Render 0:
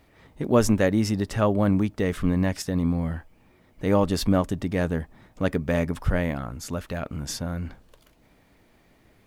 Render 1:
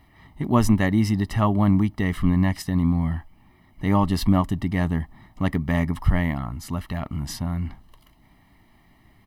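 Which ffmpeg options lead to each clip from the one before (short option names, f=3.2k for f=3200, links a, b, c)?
-af "equalizer=f=7k:w=1.6:g=-7.5,aecho=1:1:1:0.79"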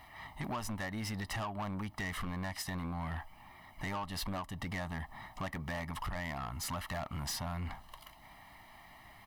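-af "lowshelf=f=520:t=q:w=1.5:g=-10,acompressor=threshold=-35dB:ratio=12,asoftclip=type=tanh:threshold=-38.5dB,volume=5dB"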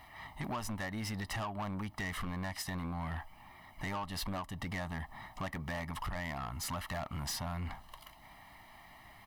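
-af anull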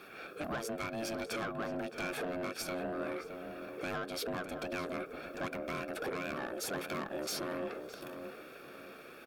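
-filter_complex "[0:a]asplit=2[a][b];[b]alimiter=level_in=20dB:limit=-24dB:level=0:latency=1,volume=-20dB,volume=-2dB[c];[a][c]amix=inputs=2:normalize=0,aeval=exprs='val(0)*sin(2*PI*450*n/s)':c=same,asplit=2[d][e];[e]adelay=618,lowpass=f=1.5k:p=1,volume=-7dB,asplit=2[f][g];[g]adelay=618,lowpass=f=1.5k:p=1,volume=0.39,asplit=2[h][i];[i]adelay=618,lowpass=f=1.5k:p=1,volume=0.39,asplit=2[j][k];[k]adelay=618,lowpass=f=1.5k:p=1,volume=0.39,asplit=2[l][m];[m]adelay=618,lowpass=f=1.5k:p=1,volume=0.39[n];[d][f][h][j][l][n]amix=inputs=6:normalize=0,volume=1dB"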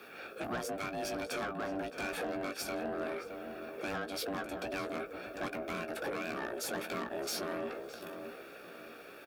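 -filter_complex "[0:a]afreqshift=32,aeval=exprs='0.0376*(abs(mod(val(0)/0.0376+3,4)-2)-1)':c=same,asplit=2[a][b];[b]adelay=17,volume=-8dB[c];[a][c]amix=inputs=2:normalize=0"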